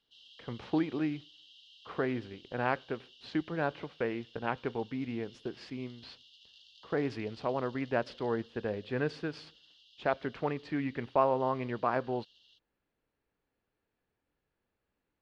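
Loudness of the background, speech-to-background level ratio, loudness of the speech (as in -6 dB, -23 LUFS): -57.5 LUFS, 22.5 dB, -35.0 LUFS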